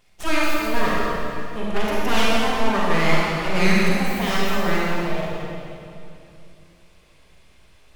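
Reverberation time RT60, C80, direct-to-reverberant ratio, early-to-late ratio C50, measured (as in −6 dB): 2.7 s, −2.0 dB, −6.0 dB, −4.5 dB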